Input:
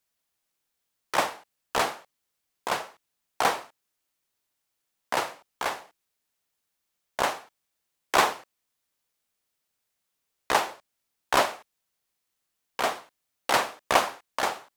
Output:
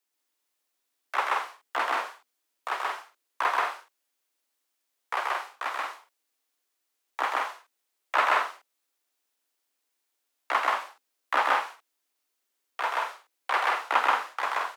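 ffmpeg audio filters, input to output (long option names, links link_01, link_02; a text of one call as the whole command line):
ffmpeg -i in.wav -filter_complex "[0:a]acrossover=split=2800[link_01][link_02];[link_02]acompressor=threshold=-46dB:ratio=4:attack=1:release=60[link_03];[link_01][link_03]amix=inputs=2:normalize=0,afreqshift=240,aecho=1:1:131.2|177.8:0.891|0.562,volume=-2.5dB" out.wav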